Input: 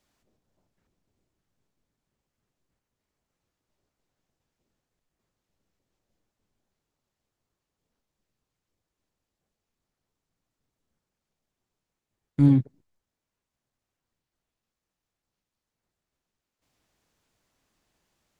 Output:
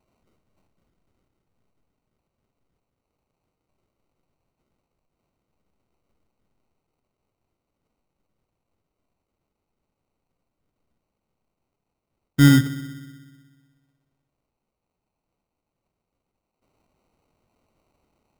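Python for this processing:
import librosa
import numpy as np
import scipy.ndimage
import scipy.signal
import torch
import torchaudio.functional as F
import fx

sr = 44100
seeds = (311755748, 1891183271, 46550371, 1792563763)

p1 = x + fx.echo_filtered(x, sr, ms=62, feedback_pct=79, hz=1300.0, wet_db=-16.0, dry=0)
p2 = fx.sample_hold(p1, sr, seeds[0], rate_hz=1700.0, jitter_pct=0)
y = F.gain(torch.from_numpy(p2), 4.5).numpy()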